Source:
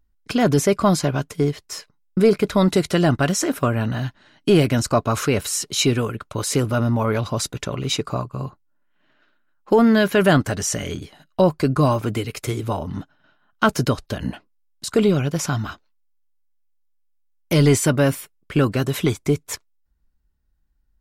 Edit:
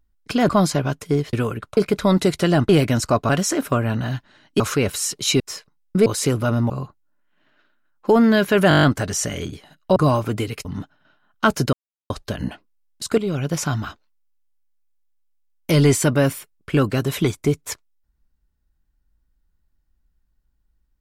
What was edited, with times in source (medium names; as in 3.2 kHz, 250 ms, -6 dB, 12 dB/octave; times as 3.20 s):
0.49–0.78 s: delete
1.62–2.28 s: swap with 5.91–6.35 s
4.51–5.11 s: move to 3.20 s
6.99–8.33 s: delete
10.32 s: stutter 0.02 s, 8 plays
11.45–11.73 s: delete
12.42–12.84 s: delete
13.92 s: insert silence 0.37 s
15.00–15.33 s: fade in, from -12.5 dB